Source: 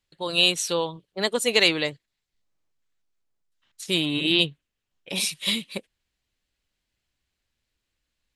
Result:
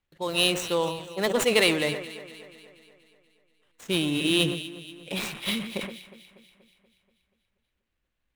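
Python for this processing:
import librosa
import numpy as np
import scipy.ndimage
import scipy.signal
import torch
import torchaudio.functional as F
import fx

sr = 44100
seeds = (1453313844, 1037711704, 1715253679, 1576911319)

y = scipy.ndimage.median_filter(x, 9, mode='constant')
y = fx.echo_alternate(y, sr, ms=120, hz=2000.0, feedback_pct=74, wet_db=-12.5)
y = fx.sustainer(y, sr, db_per_s=75.0)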